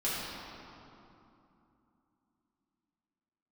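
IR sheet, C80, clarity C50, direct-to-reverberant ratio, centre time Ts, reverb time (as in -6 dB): -1.5 dB, -3.5 dB, -10.0 dB, 171 ms, 2.9 s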